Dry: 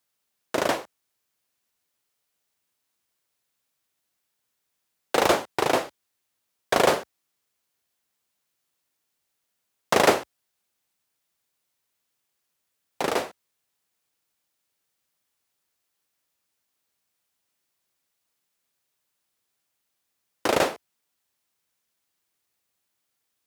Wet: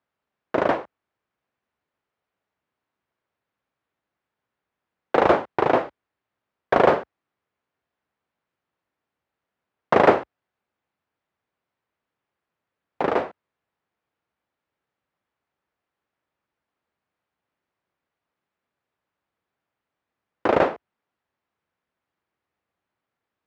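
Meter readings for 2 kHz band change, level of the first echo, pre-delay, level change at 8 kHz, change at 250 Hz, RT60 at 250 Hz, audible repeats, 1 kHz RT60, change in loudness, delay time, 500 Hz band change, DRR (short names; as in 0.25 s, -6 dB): +0.5 dB, none, none, under -20 dB, +4.0 dB, none, none, none, +2.5 dB, none, +4.0 dB, none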